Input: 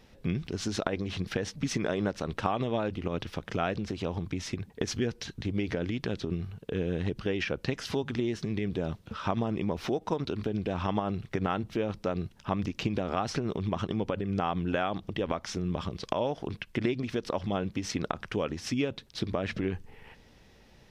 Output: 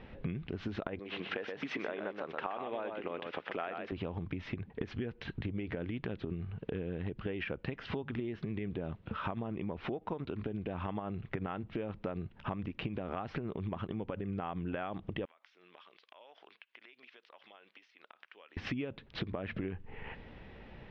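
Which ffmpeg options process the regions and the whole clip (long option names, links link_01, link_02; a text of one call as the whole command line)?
ffmpeg -i in.wav -filter_complex "[0:a]asettb=1/sr,asplit=3[link_01][link_02][link_03];[link_01]atrim=end=0.994[link_04];[link_02]atrim=start=0.99:end=3.92,asetpts=PTS-STARTPTS,afade=type=in:duration=0.004:curve=qsin,afade=type=out:start_time=2.926:duration=0.004:curve=qsin,highpass=420,aecho=1:1:124:0.473,atrim=end_sample=129213[link_05];[link_03]atrim=start=3.916[link_06];[link_04][link_05]acrossfade=duration=0.004:curve1=hsin:curve2=qsin[link_07];[link_07][link_06]acrossfade=duration=0.004:curve1=qsin:curve2=hsin,asettb=1/sr,asplit=3[link_08][link_09][link_10];[link_08]atrim=end=15.254[link_11];[link_09]atrim=start=15.25:end=18.57,asetpts=PTS-STARTPTS,afade=type=in:duration=0.004:curve=qsin,afade=type=out:start_time=3.316:duration=0.004:curve=qsin,aderivative,acompressor=threshold=-55dB:ratio=20:attack=3.2:release=140:knee=1:detection=peak,highpass=380,lowpass=6800[link_12];[link_10]atrim=start=18.566[link_13];[link_11][link_12]acrossfade=duration=0.004:curve1=hsin:curve2=qsin[link_14];[link_14][link_13]acrossfade=duration=0.004:curve1=qsin:curve2=hsin,lowpass=frequency=2900:width=0.5412,lowpass=frequency=2900:width=1.3066,acompressor=threshold=-42dB:ratio=6,volume=6.5dB" out.wav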